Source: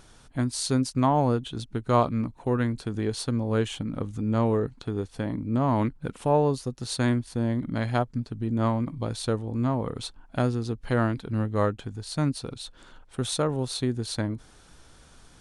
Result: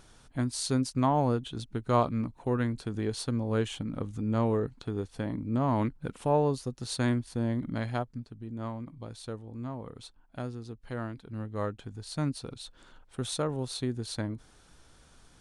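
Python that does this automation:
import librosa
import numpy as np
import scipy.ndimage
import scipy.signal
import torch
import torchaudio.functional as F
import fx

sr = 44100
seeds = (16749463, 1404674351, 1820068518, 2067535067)

y = fx.gain(x, sr, db=fx.line((7.7, -3.5), (8.4, -12.0), (11.19, -12.0), (12.04, -5.0)))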